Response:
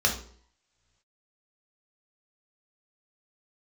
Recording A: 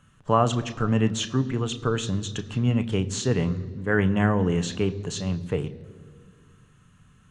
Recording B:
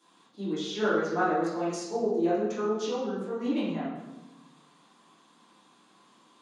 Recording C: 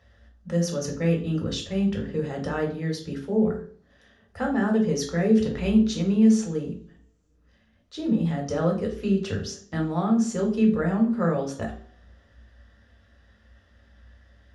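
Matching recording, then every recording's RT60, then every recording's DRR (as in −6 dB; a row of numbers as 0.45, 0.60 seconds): C; 2.0 s, 1.1 s, non-exponential decay; 9.5, −11.5, −0.5 decibels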